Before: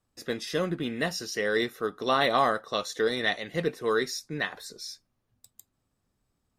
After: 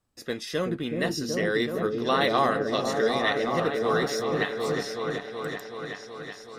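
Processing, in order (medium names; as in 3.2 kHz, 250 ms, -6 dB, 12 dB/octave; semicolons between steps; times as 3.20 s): 3.64–4.75 s: hysteresis with a dead band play -52 dBFS; delay with an opening low-pass 375 ms, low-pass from 400 Hz, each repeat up 1 oct, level 0 dB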